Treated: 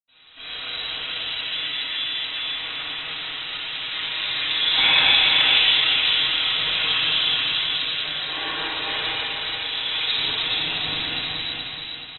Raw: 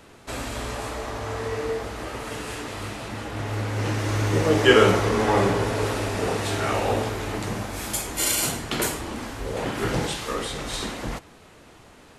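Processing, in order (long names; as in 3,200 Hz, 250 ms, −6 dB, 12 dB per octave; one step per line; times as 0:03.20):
parametric band 260 Hz −14.5 dB 0.91 octaves
comb filter 6.1 ms, depth 52%
wave folding −12.5 dBFS
high-frequency loss of the air 150 metres
repeating echo 425 ms, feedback 45%, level −3.5 dB
convolution reverb, pre-delay 76 ms
voice inversion scrambler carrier 3,900 Hz
level +9 dB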